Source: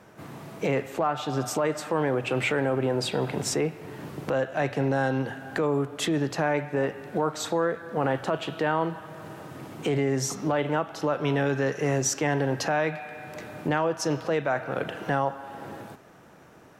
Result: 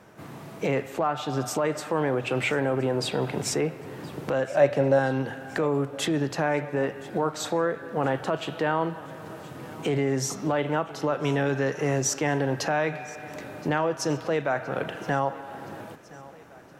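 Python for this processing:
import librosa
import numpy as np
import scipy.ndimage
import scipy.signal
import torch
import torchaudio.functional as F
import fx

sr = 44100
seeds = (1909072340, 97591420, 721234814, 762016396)

p1 = fx.peak_eq(x, sr, hz=570.0, db=14.0, octaves=0.21, at=(4.5, 4.99))
y = p1 + fx.echo_feedback(p1, sr, ms=1020, feedback_pct=54, wet_db=-20.5, dry=0)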